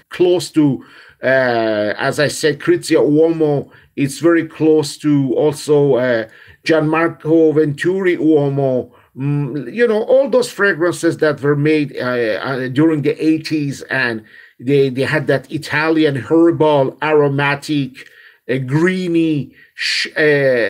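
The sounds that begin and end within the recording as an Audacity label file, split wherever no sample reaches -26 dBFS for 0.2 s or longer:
1.240000	3.630000	sound
3.970000	6.250000	sound
6.660000	8.840000	sound
9.180000	14.190000	sound
14.620000	18.010000	sound
18.490000	19.450000	sound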